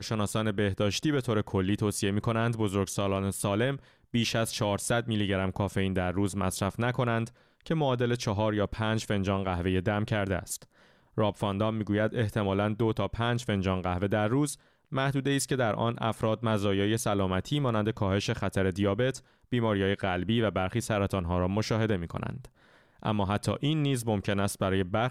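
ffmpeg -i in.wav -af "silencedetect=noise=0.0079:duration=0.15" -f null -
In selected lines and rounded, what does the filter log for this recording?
silence_start: 3.79
silence_end: 4.14 | silence_duration: 0.35
silence_start: 7.28
silence_end: 7.66 | silence_duration: 0.38
silence_start: 10.63
silence_end: 11.17 | silence_duration: 0.54
silence_start: 14.55
silence_end: 14.92 | silence_duration: 0.38
silence_start: 19.19
silence_end: 19.52 | silence_duration: 0.33
silence_start: 22.46
silence_end: 23.03 | silence_duration: 0.57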